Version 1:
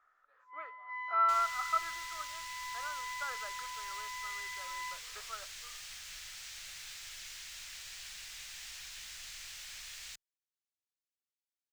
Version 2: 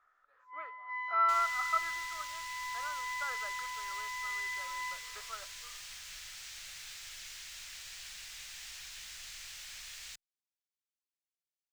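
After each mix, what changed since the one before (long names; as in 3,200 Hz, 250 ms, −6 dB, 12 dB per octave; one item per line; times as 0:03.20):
first sound: send +11.5 dB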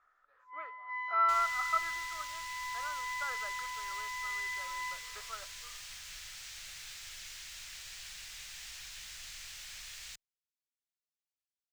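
master: add low-shelf EQ 230 Hz +3.5 dB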